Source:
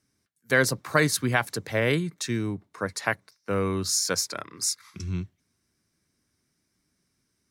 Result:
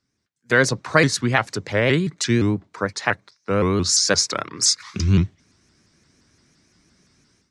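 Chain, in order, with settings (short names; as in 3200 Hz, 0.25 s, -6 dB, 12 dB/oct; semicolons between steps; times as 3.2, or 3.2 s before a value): LPF 7400 Hz 24 dB/oct; AGC gain up to 16.5 dB; shaped vibrato saw up 5.8 Hz, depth 160 cents; gain -1 dB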